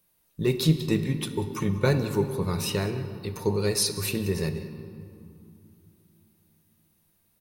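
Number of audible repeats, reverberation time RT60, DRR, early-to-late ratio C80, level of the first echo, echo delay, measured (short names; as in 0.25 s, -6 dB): 1, 2.8 s, 8.5 dB, 10.5 dB, -19.0 dB, 0.189 s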